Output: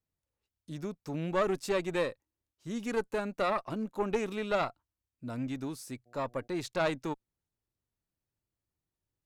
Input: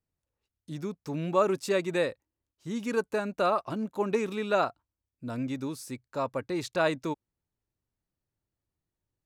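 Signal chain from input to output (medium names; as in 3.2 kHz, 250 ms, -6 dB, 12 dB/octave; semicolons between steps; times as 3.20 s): valve stage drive 20 dB, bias 0.6; 6.05–6.46 s: mains buzz 120 Hz, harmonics 6, -64 dBFS -1 dB/octave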